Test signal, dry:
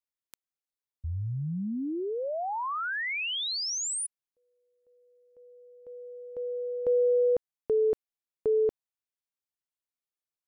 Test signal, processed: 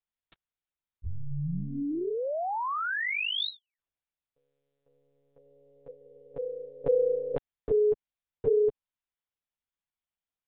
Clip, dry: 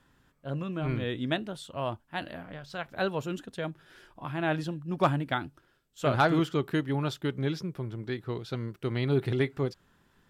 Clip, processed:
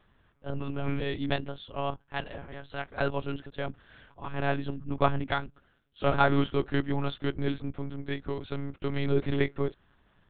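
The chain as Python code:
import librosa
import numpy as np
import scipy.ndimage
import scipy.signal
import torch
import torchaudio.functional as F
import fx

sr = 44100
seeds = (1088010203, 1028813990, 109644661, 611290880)

y = fx.lpc_monotone(x, sr, seeds[0], pitch_hz=140.0, order=10)
y = y * 10.0 ** (1.0 / 20.0)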